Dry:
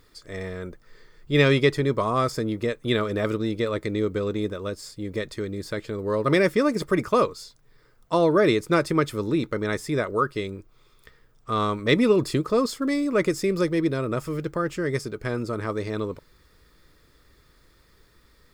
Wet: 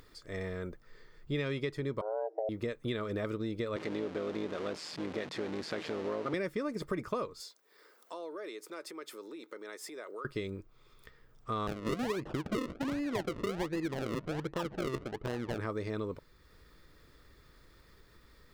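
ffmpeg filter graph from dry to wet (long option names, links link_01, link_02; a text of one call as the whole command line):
ffmpeg -i in.wav -filter_complex "[0:a]asettb=1/sr,asplit=3[link_01][link_02][link_03];[link_01]atrim=end=2.014[link_04];[link_02]atrim=start=2.01:end=2.49,asetpts=PTS-STARTPTS,afade=type=in:duration=0.004:curve=qsin,afade=type=out:start_time=0.476:duration=0.004:curve=qsin,lowpass=frequency=290:width_type=q:width=2.8,afreqshift=320[link_05];[link_03]atrim=start=2.486[link_06];[link_04][link_05]acrossfade=duration=0.004:curve1=hsin:curve2=qsin[link_07];[link_07][link_06]acrossfade=duration=0.004:curve1=qsin:curve2=hsin,asettb=1/sr,asplit=3[link_08][link_09][link_10];[link_08]atrim=end=3.764[link_11];[link_09]atrim=start=3.76:end=6.34,asetpts=PTS-STARTPTS,afade=type=in:duration=0.004:curve=qsin,afade=type=out:start_time=2.576:duration=0.004:curve=qsin,aeval=exprs='val(0)+0.5*0.0473*sgn(val(0))':channel_layout=same,tremolo=f=160:d=0.667,highpass=200,lowpass=5300[link_12];[link_10]atrim=start=6.336[link_13];[link_11][link_12]acrossfade=duration=0.004:curve1=hsin:curve2=qsin[link_14];[link_14][link_13]acrossfade=duration=0.004:curve1=qsin:curve2=hsin,asettb=1/sr,asplit=3[link_15][link_16][link_17];[link_15]atrim=end=7.404[link_18];[link_16]atrim=start=7.4:end=10.25,asetpts=PTS-STARTPTS,afade=type=in:duration=0.004:curve=qsin,afade=type=out:start_time=2.846:duration=0.004:curve=qsin,acompressor=threshold=-36dB:ratio=5:attack=3.2:release=140:knee=1:detection=peak,highpass=frequency=330:width=0.5412,highpass=frequency=330:width=1.3066,highshelf=frequency=4600:gain=7[link_19];[link_17]atrim=start=10.246[link_20];[link_18][link_19]acrossfade=duration=0.004:curve1=hsin:curve2=qsin[link_21];[link_21][link_20]acrossfade=duration=0.004:curve1=qsin:curve2=hsin,asettb=1/sr,asplit=3[link_22][link_23][link_24];[link_22]atrim=end=11.674[link_25];[link_23]atrim=start=11.67:end=15.58,asetpts=PTS-STARTPTS,afade=type=in:duration=0.004:curve=qsin,afade=type=out:start_time=3.906:duration=0.004:curve=qsin,equalizer=frequency=63:width=0.57:gain=-4.5,acrusher=samples=38:mix=1:aa=0.000001:lfo=1:lforange=38:lforate=1.3,adynamicsmooth=sensitivity=4:basefreq=1600[link_26];[link_24]atrim=start=15.576[link_27];[link_25][link_26]acrossfade=duration=0.004:curve1=hsin:curve2=qsin[link_28];[link_28][link_27]acrossfade=duration=0.004:curve1=qsin:curve2=hsin,acompressor=threshold=-27dB:ratio=6,equalizer=frequency=9900:width_type=o:width=1.8:gain=-4.5,acompressor=mode=upward:threshold=-48dB:ratio=2.5,volume=-4.5dB" out.wav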